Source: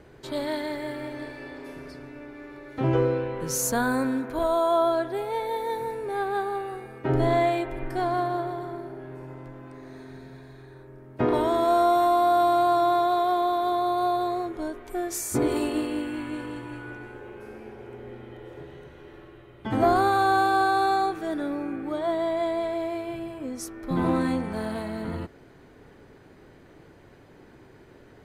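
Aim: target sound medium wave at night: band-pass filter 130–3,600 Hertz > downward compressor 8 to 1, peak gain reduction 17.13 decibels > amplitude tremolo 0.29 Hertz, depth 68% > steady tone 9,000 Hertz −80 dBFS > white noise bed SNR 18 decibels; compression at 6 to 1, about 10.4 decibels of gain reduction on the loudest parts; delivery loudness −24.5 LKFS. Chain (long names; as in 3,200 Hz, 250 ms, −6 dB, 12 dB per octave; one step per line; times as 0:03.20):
downward compressor 6 to 1, threshold −29 dBFS
band-pass filter 130–3,600 Hz
downward compressor 8 to 1, threshold −45 dBFS
amplitude tremolo 0.29 Hz, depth 68%
steady tone 9,000 Hz −80 dBFS
white noise bed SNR 18 dB
level +26.5 dB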